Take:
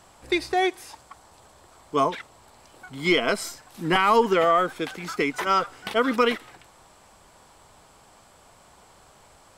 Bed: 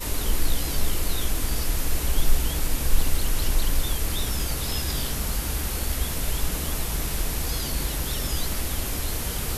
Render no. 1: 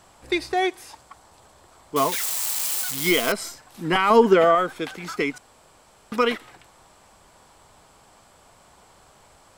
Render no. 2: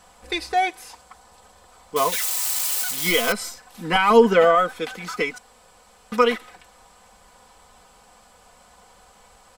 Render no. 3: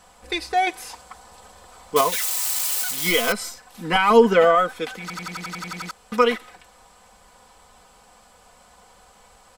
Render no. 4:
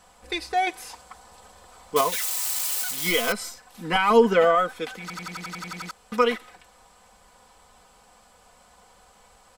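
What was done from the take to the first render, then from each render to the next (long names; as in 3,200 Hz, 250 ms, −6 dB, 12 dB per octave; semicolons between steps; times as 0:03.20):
0:01.96–0:03.32: spike at every zero crossing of −17 dBFS; 0:04.10–0:04.55: hollow resonant body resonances 220/400/590/1,500 Hz, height 7 dB, ringing for 25 ms; 0:05.38–0:06.12: fill with room tone
parametric band 280 Hz −14.5 dB 0.22 octaves; comb filter 4 ms, depth 70%
0:00.67–0:02.01: clip gain +4.5 dB; 0:05.01: stutter in place 0.09 s, 10 plays
level −3 dB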